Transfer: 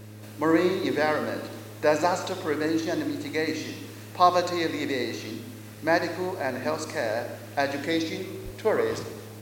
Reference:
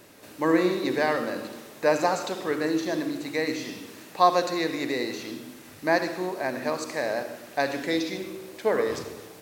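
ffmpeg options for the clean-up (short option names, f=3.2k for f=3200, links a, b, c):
-filter_complex "[0:a]bandreject=f=106.1:t=h:w=4,bandreject=f=212.2:t=h:w=4,bandreject=f=318.3:t=h:w=4,bandreject=f=424.4:t=h:w=4,bandreject=f=530.5:t=h:w=4,asplit=3[a][b][c];[a]afade=t=out:st=8.44:d=0.02[d];[b]highpass=f=140:w=0.5412,highpass=f=140:w=1.3066,afade=t=in:st=8.44:d=0.02,afade=t=out:st=8.56:d=0.02[e];[c]afade=t=in:st=8.56:d=0.02[f];[d][e][f]amix=inputs=3:normalize=0"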